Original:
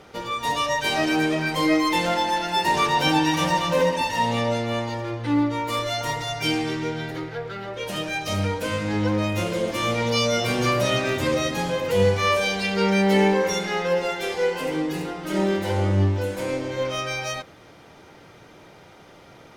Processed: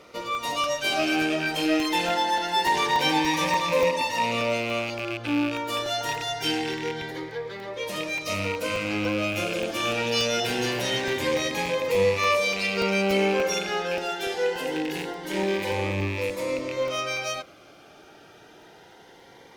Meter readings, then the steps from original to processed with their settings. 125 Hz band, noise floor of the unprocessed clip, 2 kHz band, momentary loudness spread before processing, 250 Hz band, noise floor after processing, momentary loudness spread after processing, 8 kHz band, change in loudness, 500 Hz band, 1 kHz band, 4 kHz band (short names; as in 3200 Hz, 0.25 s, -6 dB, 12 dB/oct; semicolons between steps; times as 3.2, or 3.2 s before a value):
-9.0 dB, -48 dBFS, -0.5 dB, 8 LU, -4.5 dB, -51 dBFS, 8 LU, -1.0 dB, -2.5 dB, -2.0 dB, -2.5 dB, -0.5 dB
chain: rattling part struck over -30 dBFS, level -19 dBFS; bell 8600 Hz -2 dB; in parallel at -6 dB: soft clip -19 dBFS, distortion -13 dB; on the sum: tone controls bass -11 dB, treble -1 dB; crackling interface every 0.29 s, samples 64, zero, from 0.35; cascading phaser rising 0.24 Hz; gain -2 dB